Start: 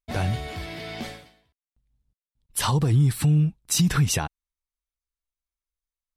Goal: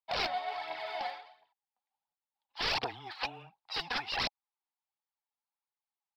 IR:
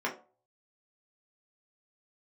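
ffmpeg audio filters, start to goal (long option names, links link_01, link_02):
-af "highpass=frequency=840:width_type=q:width=9.2,afreqshift=-14,aresample=11025,aeval=exprs='(mod(11.2*val(0)+1,2)-1)/11.2':channel_layout=same,aresample=44100,aphaser=in_gain=1:out_gain=1:delay=4.2:decay=0.54:speed=1.4:type=triangular,volume=-7dB"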